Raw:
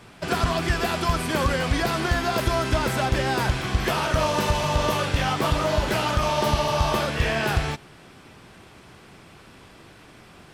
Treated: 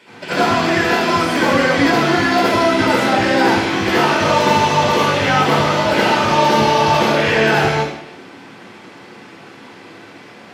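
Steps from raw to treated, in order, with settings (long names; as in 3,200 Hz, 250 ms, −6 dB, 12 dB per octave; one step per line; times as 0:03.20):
high-pass filter 250 Hz 12 dB per octave
convolution reverb RT60 0.85 s, pre-delay 63 ms, DRR −7.5 dB
level −6.5 dB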